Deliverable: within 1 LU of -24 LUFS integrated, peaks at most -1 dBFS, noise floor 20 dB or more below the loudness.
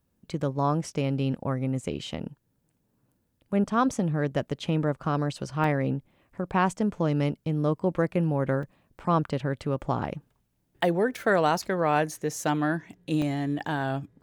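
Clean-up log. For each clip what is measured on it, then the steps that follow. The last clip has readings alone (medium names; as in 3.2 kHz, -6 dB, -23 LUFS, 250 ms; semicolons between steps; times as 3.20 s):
dropouts 3; longest dropout 3.0 ms; loudness -27.5 LUFS; peak level -10.5 dBFS; loudness target -24.0 LUFS
-> interpolate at 5.64/8.63/13.22 s, 3 ms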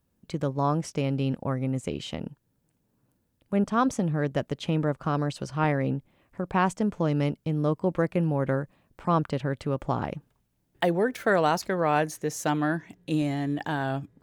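dropouts 0; loudness -27.5 LUFS; peak level -10.5 dBFS; loudness target -24.0 LUFS
-> trim +3.5 dB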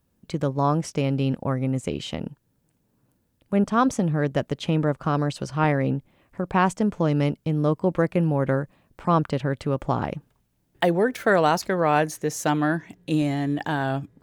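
loudness -24.5 LUFS; peak level -7.0 dBFS; noise floor -70 dBFS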